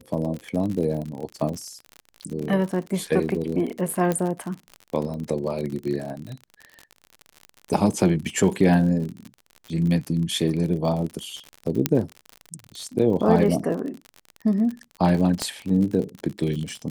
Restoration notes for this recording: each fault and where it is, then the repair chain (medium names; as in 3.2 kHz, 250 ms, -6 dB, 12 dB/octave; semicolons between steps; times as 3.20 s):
crackle 48 per s -29 dBFS
4.12 s: pop -11 dBFS
11.86 s: pop -2 dBFS
15.42 s: pop -10 dBFS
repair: de-click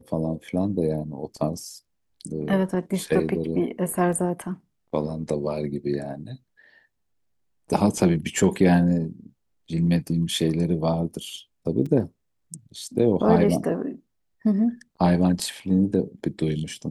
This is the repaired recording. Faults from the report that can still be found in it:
4.12 s: pop
11.86 s: pop
15.42 s: pop